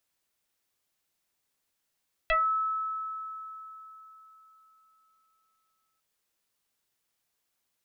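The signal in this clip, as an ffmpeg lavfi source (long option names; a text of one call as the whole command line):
ffmpeg -f lavfi -i "aevalsrc='0.0891*pow(10,-3*t/3.84)*sin(2*PI*1300*t+3*pow(10,-3*t/0.22)*sin(2*PI*0.51*1300*t))':duration=3.7:sample_rate=44100" out.wav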